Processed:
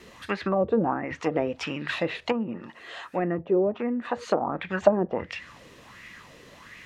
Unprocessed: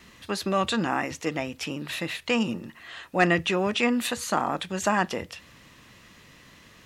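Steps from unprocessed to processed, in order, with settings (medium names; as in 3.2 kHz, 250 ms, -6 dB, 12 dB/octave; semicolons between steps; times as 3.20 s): low-pass that closes with the level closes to 450 Hz, closed at -21 dBFS; 2.32–4.42 s: bass shelf 160 Hz -10 dB; sweeping bell 1.4 Hz 420–2200 Hz +14 dB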